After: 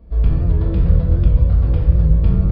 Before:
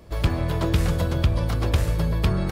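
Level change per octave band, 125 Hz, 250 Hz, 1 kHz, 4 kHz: +7.5 dB, +3.5 dB, -7.5 dB, under -10 dB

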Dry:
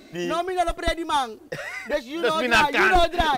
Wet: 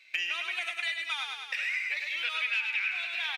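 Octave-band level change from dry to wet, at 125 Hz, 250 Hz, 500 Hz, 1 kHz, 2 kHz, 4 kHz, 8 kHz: under -40 dB, under -35 dB, -30.5 dB, -21.5 dB, -5.5 dB, -4.5 dB, -11.5 dB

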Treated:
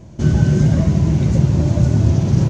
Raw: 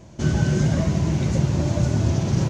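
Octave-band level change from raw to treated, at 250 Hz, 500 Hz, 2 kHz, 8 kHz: +5.5 dB, +2.5 dB, -0.5 dB, no reading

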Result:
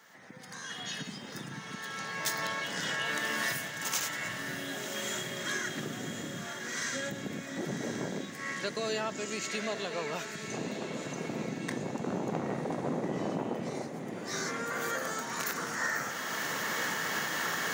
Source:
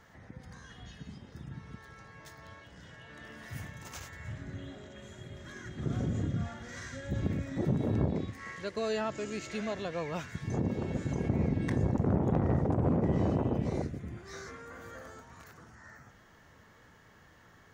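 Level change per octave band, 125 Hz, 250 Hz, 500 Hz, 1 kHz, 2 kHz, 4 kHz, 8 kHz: -10.5 dB, -3.5 dB, 0.0 dB, +5.5 dB, +12.5 dB, +13.5 dB, +16.0 dB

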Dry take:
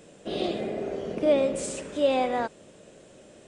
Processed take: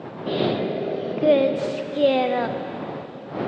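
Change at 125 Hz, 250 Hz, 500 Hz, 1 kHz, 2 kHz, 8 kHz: +10.0 dB, +5.5 dB, +5.0 dB, +4.0 dB, +5.5 dB, under -10 dB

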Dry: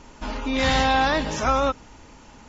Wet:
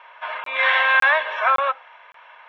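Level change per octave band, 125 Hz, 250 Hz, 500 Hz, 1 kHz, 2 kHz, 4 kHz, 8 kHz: under -30 dB, under -25 dB, -2.5 dB, +1.5 dB, +10.0 dB, -1.0 dB, no reading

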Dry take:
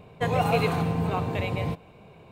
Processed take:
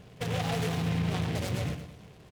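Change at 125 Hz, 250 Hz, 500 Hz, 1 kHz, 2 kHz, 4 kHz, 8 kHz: -2.5 dB, -3.0 dB, -8.5 dB, -10.0 dB, -5.5 dB, 0.0 dB, +4.5 dB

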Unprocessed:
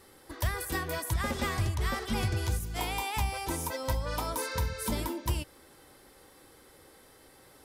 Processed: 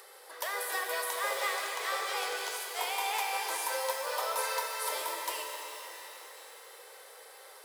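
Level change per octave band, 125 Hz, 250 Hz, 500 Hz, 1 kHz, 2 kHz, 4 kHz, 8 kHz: under -40 dB, -21.5 dB, +0.5 dB, +2.5 dB, +2.5 dB, +2.5 dB, +2.0 dB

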